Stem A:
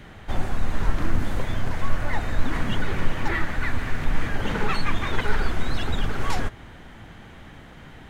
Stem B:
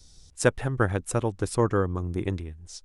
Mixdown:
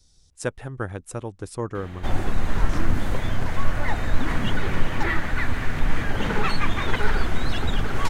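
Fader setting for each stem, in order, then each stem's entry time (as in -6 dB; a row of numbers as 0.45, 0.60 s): +1.5, -6.0 dB; 1.75, 0.00 s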